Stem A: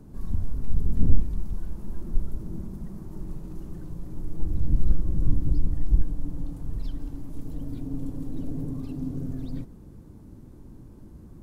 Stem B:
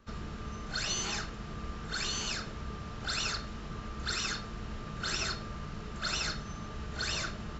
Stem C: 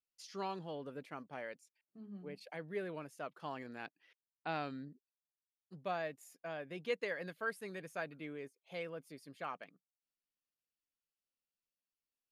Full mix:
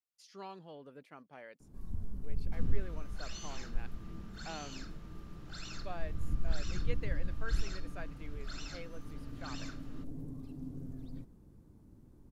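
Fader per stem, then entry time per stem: -12.0, -14.5, -6.0 dB; 1.60, 2.45, 0.00 s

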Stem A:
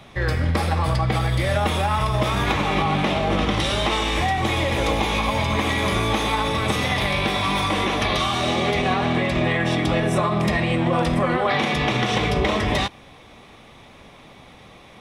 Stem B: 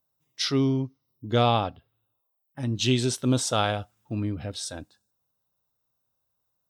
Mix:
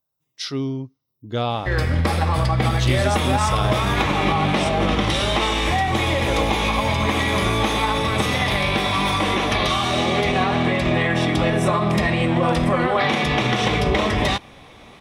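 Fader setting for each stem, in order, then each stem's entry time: +1.5, -2.0 dB; 1.50, 0.00 s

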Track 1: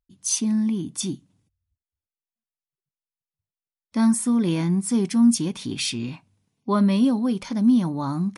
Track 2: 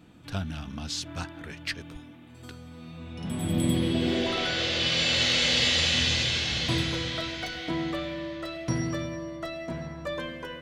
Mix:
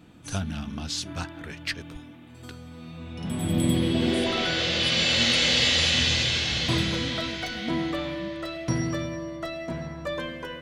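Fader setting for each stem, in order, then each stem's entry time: -17.5, +2.0 dB; 0.00, 0.00 s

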